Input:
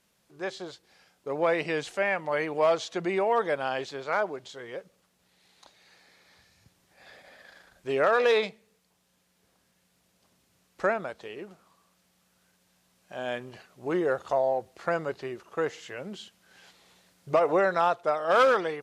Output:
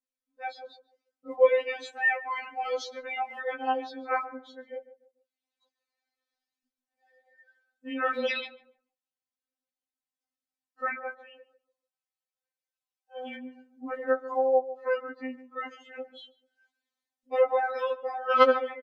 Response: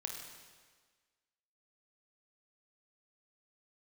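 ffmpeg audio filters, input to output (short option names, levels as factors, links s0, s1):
-filter_complex "[0:a]asplit=3[s0][s1][s2];[s0]afade=t=out:st=10.93:d=0.02[s3];[s1]highpass=f=390:w=0.5412,highpass=f=390:w=1.3066,afade=t=in:st=10.93:d=0.02,afade=t=out:st=13.25:d=0.02[s4];[s2]afade=t=in:st=13.25:d=0.02[s5];[s3][s4][s5]amix=inputs=3:normalize=0,afftdn=nr=27:nf=-43,bandreject=f=980:w=21,aphaser=in_gain=1:out_gain=1:delay=1.7:decay=0.37:speed=0.72:type=triangular,asplit=2[s6][s7];[s7]adelay=146,lowpass=f=1000:p=1,volume=0.211,asplit=2[s8][s9];[s9]adelay=146,lowpass=f=1000:p=1,volume=0.34,asplit=2[s10][s11];[s11]adelay=146,lowpass=f=1000:p=1,volume=0.34[s12];[s8][s10][s12]amix=inputs=3:normalize=0[s13];[s6][s13]amix=inputs=2:normalize=0,afftfilt=real='re*3.46*eq(mod(b,12),0)':imag='im*3.46*eq(mod(b,12),0)':win_size=2048:overlap=0.75"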